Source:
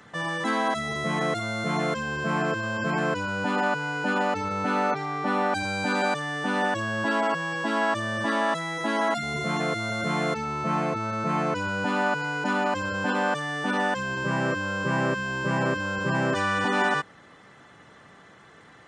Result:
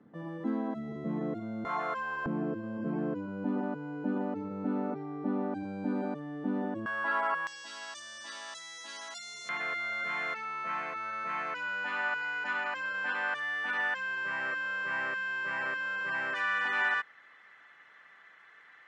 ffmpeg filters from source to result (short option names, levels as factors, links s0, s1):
-af "asetnsamples=n=441:p=0,asendcmd='1.65 bandpass f 1100;2.26 bandpass f 270;6.86 bandpass f 1300;7.47 bandpass f 5700;9.49 bandpass f 1900',bandpass=f=260:t=q:w=2:csg=0"